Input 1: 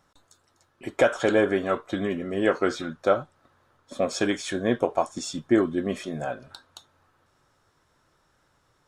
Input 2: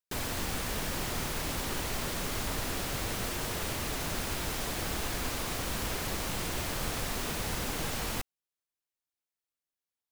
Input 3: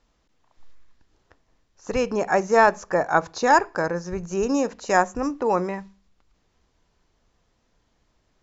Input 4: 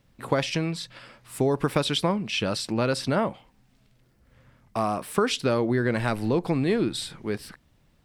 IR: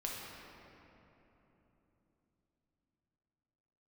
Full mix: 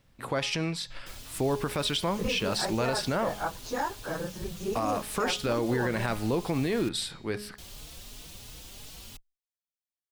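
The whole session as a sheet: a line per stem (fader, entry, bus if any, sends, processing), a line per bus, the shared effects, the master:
muted
−15.0 dB, 0.95 s, muted 0:06.89–0:07.58, no send, high shelf with overshoot 2,400 Hz +8 dB, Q 1.5; barber-pole flanger 4.2 ms +2.9 Hz
−9.5 dB, 0.30 s, no send, random phases in long frames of 50 ms; downward compressor, threshold −18 dBFS, peak gain reduction 8.5 dB
+0.5 dB, 0.00 s, no send, low-shelf EQ 320 Hz −8.5 dB; hum removal 207.8 Hz, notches 37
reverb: not used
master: low-shelf EQ 120 Hz +9 dB; brickwall limiter −18.5 dBFS, peak gain reduction 8.5 dB

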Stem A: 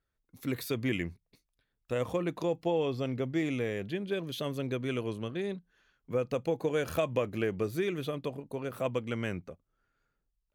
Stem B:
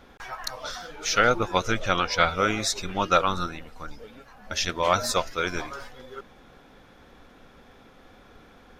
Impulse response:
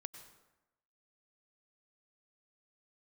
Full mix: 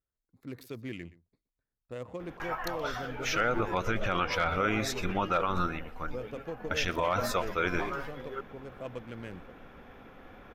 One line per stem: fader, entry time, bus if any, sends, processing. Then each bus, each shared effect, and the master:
−8.5 dB, 0.00 s, no send, echo send −19 dB, adaptive Wiener filter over 15 samples
+1.5 dB, 2.20 s, no send, echo send −22 dB, flat-topped bell 6,000 Hz −11 dB; hard clipping −9.5 dBFS, distortion −28 dB; high-shelf EQ 9,600 Hz −4 dB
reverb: not used
echo: single-tap delay 122 ms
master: brickwall limiter −18.5 dBFS, peak gain reduction 10.5 dB

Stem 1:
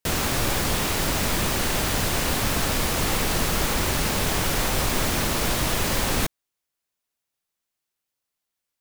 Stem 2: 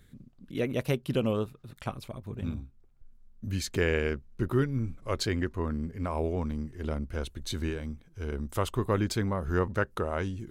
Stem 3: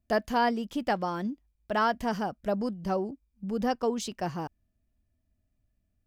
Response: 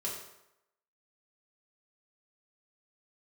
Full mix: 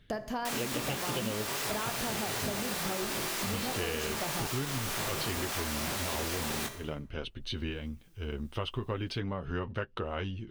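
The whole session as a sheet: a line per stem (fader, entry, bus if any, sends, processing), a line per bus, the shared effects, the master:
−5.0 dB, 0.40 s, send −6.5 dB, gate on every frequency bin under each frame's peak −10 dB weak; upward compression, threshold −43 dBFS; chorus effect 2.4 Hz, delay 18.5 ms, depth 7.7 ms
+1.0 dB, 0.00 s, no send, Savitzky-Golay smoothing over 15 samples; flanger 0.43 Hz, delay 6.7 ms, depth 2.9 ms, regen −35%; parametric band 2,900 Hz +12.5 dB 0.44 octaves
0.0 dB, 0.00 s, send −10 dB, downward compressor, threshold −32 dBFS, peak gain reduction 11 dB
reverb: on, RT60 0.85 s, pre-delay 3 ms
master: downward compressor, threshold −30 dBFS, peak gain reduction 8.5 dB

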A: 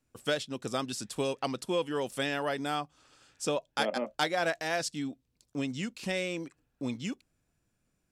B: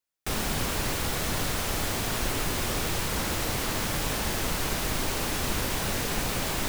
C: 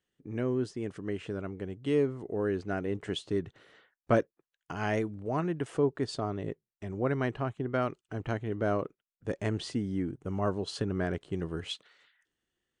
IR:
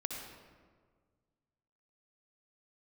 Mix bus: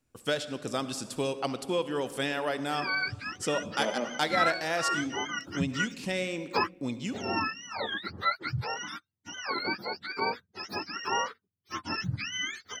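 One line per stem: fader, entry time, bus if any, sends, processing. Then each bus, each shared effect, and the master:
−2.0 dB, 0.00 s, send −7 dB, no processing
muted
+1.5 dB, 2.45 s, no send, frequency axis turned over on the octave scale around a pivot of 760 Hz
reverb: on, RT60 1.7 s, pre-delay 56 ms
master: no processing

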